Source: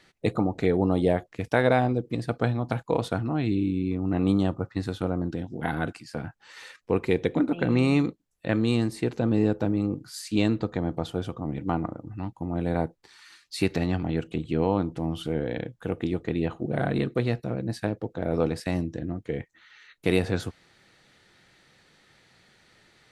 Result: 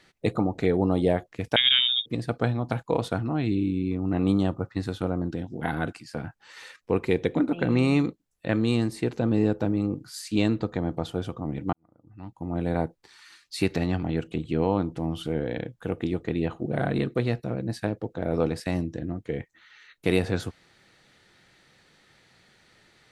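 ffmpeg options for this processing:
ffmpeg -i in.wav -filter_complex "[0:a]asettb=1/sr,asplit=3[link_01][link_02][link_03];[link_01]atrim=end=1.564[link_04];[link_02]atrim=start=1.56:end=2.06,asetpts=PTS-STARTPTS,afade=type=in:duration=0.004:curve=qsin,afade=type=out:start_time=0.496:duration=0.004:curve=qsin,lowpass=frequency=3200:width_type=q:width=0.5098,lowpass=frequency=3200:width_type=q:width=0.6013,lowpass=frequency=3200:width_type=q:width=0.9,lowpass=frequency=3200:width_type=q:width=2.563,afreqshift=-3800[link_05];[link_03]atrim=start=2.056[link_06];[link_04][link_05]acrossfade=duration=0.004:curve1=hsin:curve2=qsin[link_07];[link_07][link_06]acrossfade=duration=0.004:curve1=qsin:curve2=hsin,asplit=2[link_08][link_09];[link_08]atrim=end=11.73,asetpts=PTS-STARTPTS,afade=type=out:start_time=11.726:duration=0.004:curve=hsin[link_10];[link_09]atrim=start=11.73,asetpts=PTS-STARTPTS,afade=type=in:duration=0.79:curve=qua[link_11];[link_10][link_11]concat=n=2:v=0:a=1" out.wav

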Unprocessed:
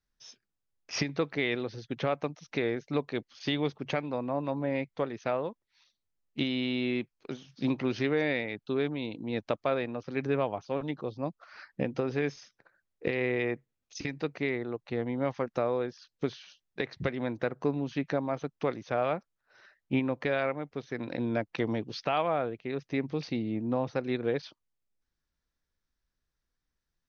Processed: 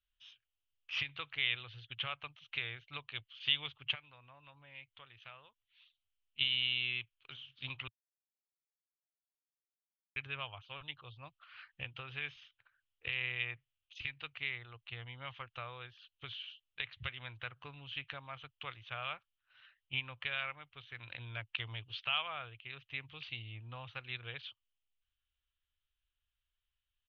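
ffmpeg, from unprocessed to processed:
ffmpeg -i in.wav -filter_complex "[0:a]asplit=3[link_01][link_02][link_03];[link_01]afade=type=out:start_time=3.94:duration=0.02[link_04];[link_02]acompressor=threshold=-54dB:ratio=1.5:attack=3.2:release=140:knee=1:detection=peak,afade=type=in:start_time=3.94:duration=0.02,afade=type=out:start_time=6.39:duration=0.02[link_05];[link_03]afade=type=in:start_time=6.39:duration=0.02[link_06];[link_04][link_05][link_06]amix=inputs=3:normalize=0,asplit=3[link_07][link_08][link_09];[link_07]atrim=end=7.88,asetpts=PTS-STARTPTS,afade=type=out:start_time=7.876:duration=0.004:curve=hsin[link_10];[link_08]atrim=start=7.88:end=10.16,asetpts=PTS-STARTPTS,volume=0[link_11];[link_09]atrim=start=10.16,asetpts=PTS-STARTPTS,afade=type=in:duration=0.004:curve=hsin[link_12];[link_10][link_11][link_12]concat=n=3:v=0:a=1,firequalizer=gain_entry='entry(110,0);entry(190,-28);entry(1200,-1);entry(1900,-2);entry(3000,15);entry(5100,-18)':delay=0.05:min_phase=1,volume=-5dB" out.wav

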